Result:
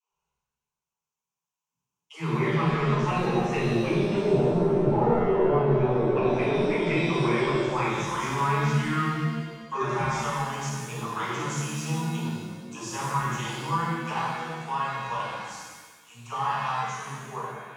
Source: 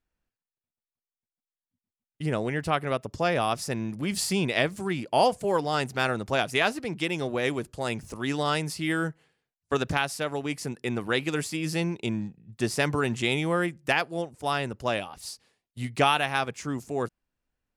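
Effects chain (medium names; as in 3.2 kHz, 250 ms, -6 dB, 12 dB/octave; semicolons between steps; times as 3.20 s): Doppler pass-by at 4.74 s, 16 m/s, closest 1.5 m; in parallel at -1 dB: gain riding within 4 dB 0.5 s; on the sum: touch-sensitive phaser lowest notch 320 Hz, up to 1.8 kHz, full sweep at -35.5 dBFS; rippled EQ curve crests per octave 0.74, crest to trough 16 dB; overdrive pedal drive 34 dB, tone 3 kHz, clips at -11 dBFS; bass shelf 300 Hz +8 dB; phase dispersion lows, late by 119 ms, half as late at 310 Hz; low-pass that closes with the level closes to 650 Hz, closed at -18.5 dBFS; reverse; compression 4:1, threshold -30 dBFS, peak gain reduction 15.5 dB; reverse; pitch-shifted reverb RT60 1.4 s, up +7 st, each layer -8 dB, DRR -7 dB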